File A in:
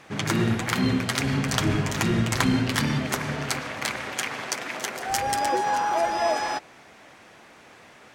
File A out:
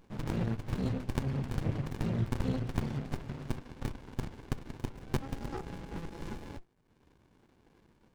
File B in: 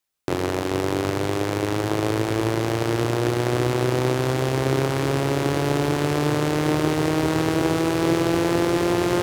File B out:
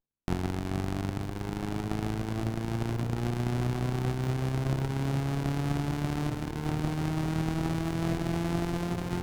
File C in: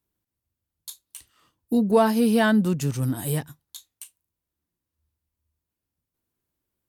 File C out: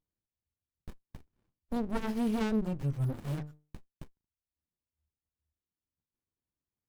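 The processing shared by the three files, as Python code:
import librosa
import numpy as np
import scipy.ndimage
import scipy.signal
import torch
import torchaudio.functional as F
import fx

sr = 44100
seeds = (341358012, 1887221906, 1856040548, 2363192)

y = fx.dereverb_blind(x, sr, rt60_s=0.94)
y = fx.hum_notches(y, sr, base_hz=50, count=10)
y = fx.dynamic_eq(y, sr, hz=120.0, q=0.97, threshold_db=-41.0, ratio=4.0, max_db=4)
y = fx.running_max(y, sr, window=65)
y = F.gain(torch.from_numpy(y), -7.5).numpy()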